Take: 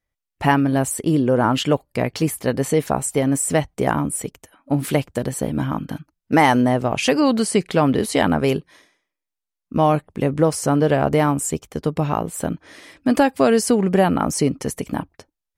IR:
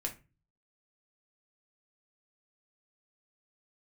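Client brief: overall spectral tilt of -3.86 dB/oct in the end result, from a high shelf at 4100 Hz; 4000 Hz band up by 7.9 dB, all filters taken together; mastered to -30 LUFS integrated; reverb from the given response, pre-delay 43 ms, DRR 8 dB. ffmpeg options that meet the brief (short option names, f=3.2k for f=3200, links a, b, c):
-filter_complex "[0:a]equalizer=f=4k:t=o:g=6,highshelf=f=4.1k:g=8.5,asplit=2[a][b];[1:a]atrim=start_sample=2205,adelay=43[c];[b][c]afir=irnorm=-1:irlink=0,volume=-9dB[d];[a][d]amix=inputs=2:normalize=0,volume=-12.5dB"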